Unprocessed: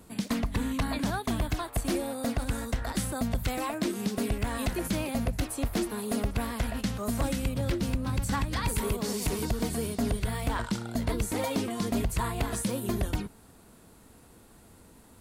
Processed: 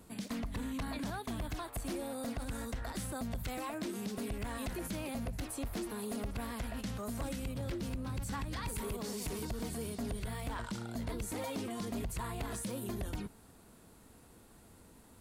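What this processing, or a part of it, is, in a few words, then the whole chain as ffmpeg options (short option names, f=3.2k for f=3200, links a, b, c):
soft clipper into limiter: -af "asoftclip=type=tanh:threshold=-22dB,alimiter=level_in=4.5dB:limit=-24dB:level=0:latency=1,volume=-4.5dB,volume=-4dB"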